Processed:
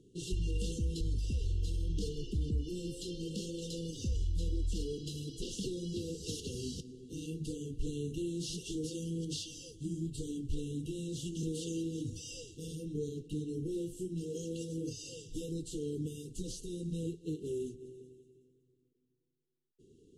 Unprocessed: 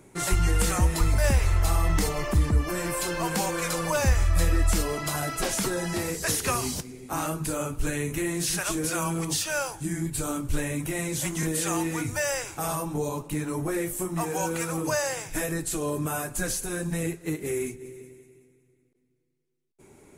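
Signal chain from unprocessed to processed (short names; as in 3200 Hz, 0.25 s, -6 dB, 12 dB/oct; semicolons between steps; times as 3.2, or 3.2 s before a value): LPF 4900 Hz 12 dB/oct; limiter -18 dBFS, peak gain reduction 7 dB; brick-wall FIR band-stop 510–2700 Hz; gain -7.5 dB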